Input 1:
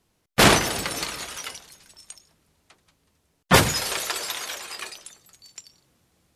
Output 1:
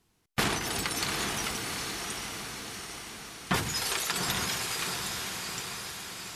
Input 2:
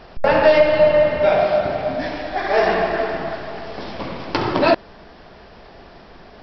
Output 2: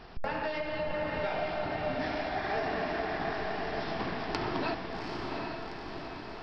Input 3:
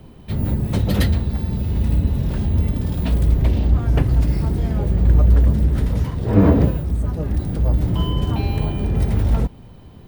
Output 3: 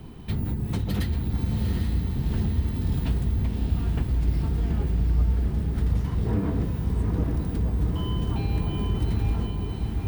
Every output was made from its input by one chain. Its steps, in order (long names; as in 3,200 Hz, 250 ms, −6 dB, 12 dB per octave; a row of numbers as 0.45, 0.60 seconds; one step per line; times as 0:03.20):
parametric band 570 Hz −10.5 dB 0.28 octaves
downward compressor 6 to 1, threshold −25 dBFS
feedback delay with all-pass diffusion 787 ms, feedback 58%, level −3.5 dB
normalise the peak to −12 dBFS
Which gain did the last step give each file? −1.0, −6.0, +1.0 decibels